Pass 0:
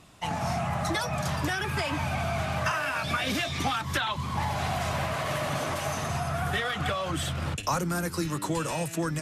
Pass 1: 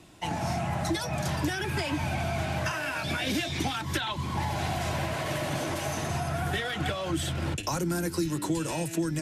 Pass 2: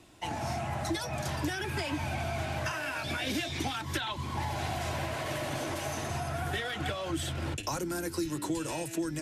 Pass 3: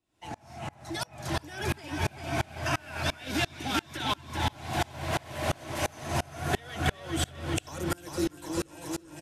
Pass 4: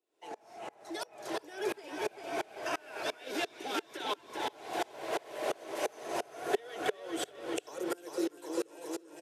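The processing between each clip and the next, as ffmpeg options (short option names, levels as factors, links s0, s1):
-filter_complex "[0:a]equalizer=f=330:t=o:w=0.39:g=9.5,bandreject=f=1200:w=6.1,acrossover=split=210|3000[s0][s1][s2];[s1]acompressor=threshold=0.0355:ratio=6[s3];[s0][s3][s2]amix=inputs=3:normalize=0"
-af "equalizer=f=170:w=5:g=-10,volume=0.708"
-af "dynaudnorm=f=150:g=13:m=2.66,aecho=1:1:397|794|1191|1588|1985|2382|2779|3176:0.531|0.319|0.191|0.115|0.0688|0.0413|0.0248|0.0149,aeval=exprs='val(0)*pow(10,-30*if(lt(mod(-2.9*n/s,1),2*abs(-2.9)/1000),1-mod(-2.9*n/s,1)/(2*abs(-2.9)/1000),(mod(-2.9*n/s,1)-2*abs(-2.9)/1000)/(1-2*abs(-2.9)/1000))/20)':c=same"
-af "highpass=f=430:t=q:w=4.9,volume=0.447"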